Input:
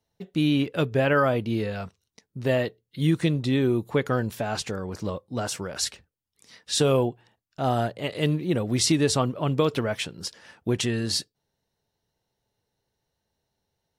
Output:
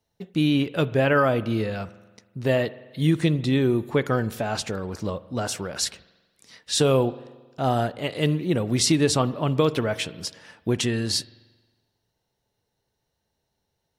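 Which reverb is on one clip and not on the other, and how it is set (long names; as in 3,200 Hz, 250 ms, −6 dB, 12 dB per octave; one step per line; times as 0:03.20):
spring reverb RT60 1.3 s, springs 45 ms, chirp 40 ms, DRR 17 dB
level +1.5 dB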